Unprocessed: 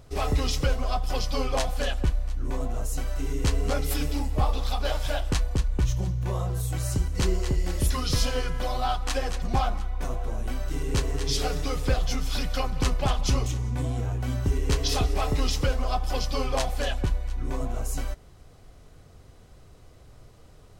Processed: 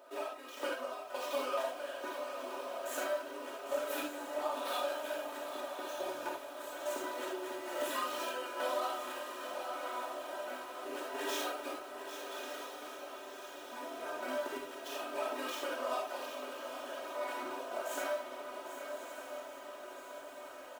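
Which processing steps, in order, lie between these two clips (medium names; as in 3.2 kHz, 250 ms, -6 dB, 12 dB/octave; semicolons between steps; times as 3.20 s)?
median filter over 9 samples; high-pass 450 Hz 24 dB/octave; peaking EQ 5.3 kHz -3.5 dB 1.8 oct; band-stop 2.1 kHz, Q 8; comb 3.2 ms, depth 94%; compression 6:1, threshold -41 dBFS, peak gain reduction 17 dB; random-step tremolo, depth 100%; echo that smears into a reverb 1214 ms, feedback 68%, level -8 dB; gated-style reverb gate 110 ms flat, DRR -2.5 dB; bit-crushed delay 799 ms, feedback 35%, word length 10-bit, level -10 dB; trim +3.5 dB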